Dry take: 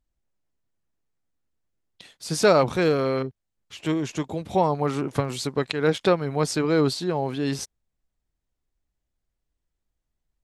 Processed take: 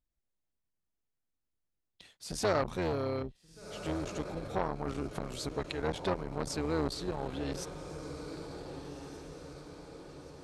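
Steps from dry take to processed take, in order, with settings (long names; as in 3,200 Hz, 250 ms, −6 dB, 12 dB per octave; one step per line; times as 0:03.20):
sub-octave generator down 2 octaves, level −4 dB
feedback delay with all-pass diffusion 1,531 ms, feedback 52%, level −12 dB
saturating transformer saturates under 960 Hz
level −8.5 dB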